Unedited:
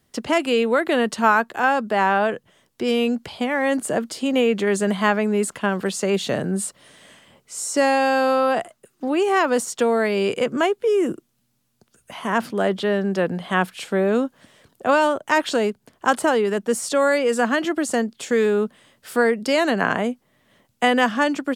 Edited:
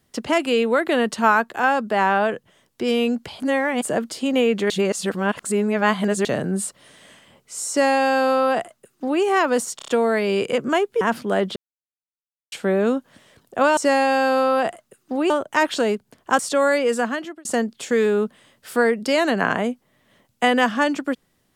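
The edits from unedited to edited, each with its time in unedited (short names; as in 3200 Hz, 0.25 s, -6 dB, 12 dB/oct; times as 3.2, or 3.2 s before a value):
3.4–3.82 reverse
4.7–6.25 reverse
7.69–9.22 copy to 15.05
9.76 stutter 0.03 s, 5 plays
10.89–12.29 cut
12.84–13.8 mute
16.14–16.79 cut
17.29–17.85 fade out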